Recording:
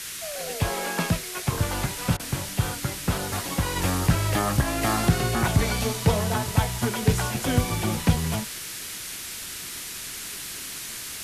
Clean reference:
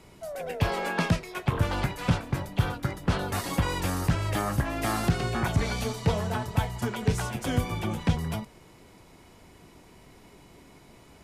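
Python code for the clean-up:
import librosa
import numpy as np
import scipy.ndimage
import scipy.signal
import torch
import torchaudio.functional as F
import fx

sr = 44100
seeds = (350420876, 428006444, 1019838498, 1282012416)

y = fx.fix_interpolate(x, sr, at_s=(2.17,), length_ms=24.0)
y = fx.noise_reduce(y, sr, print_start_s=9.16, print_end_s=9.66, reduce_db=17.0)
y = fx.gain(y, sr, db=fx.steps((0.0, 0.0), (3.76, -4.0)))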